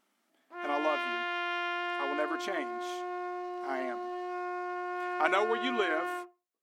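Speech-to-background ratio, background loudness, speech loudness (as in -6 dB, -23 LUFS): 1.5 dB, -35.5 LUFS, -34.0 LUFS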